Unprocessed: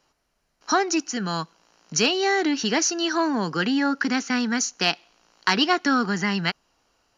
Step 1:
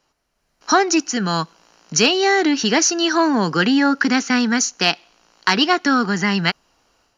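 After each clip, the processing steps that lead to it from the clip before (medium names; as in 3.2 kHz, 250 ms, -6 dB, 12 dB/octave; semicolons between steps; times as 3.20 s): level rider gain up to 8 dB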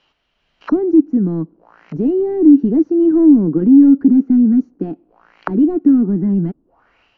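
overload inside the chain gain 16.5 dB; touch-sensitive low-pass 300–3200 Hz down, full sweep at -26.5 dBFS; trim +2 dB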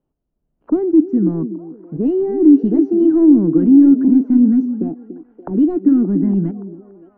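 level-controlled noise filter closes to 310 Hz, open at -8.5 dBFS; repeats whose band climbs or falls 287 ms, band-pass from 300 Hz, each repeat 0.7 oct, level -9 dB; trim -1 dB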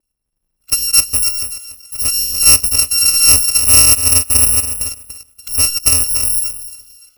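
bit-reversed sample order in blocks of 256 samples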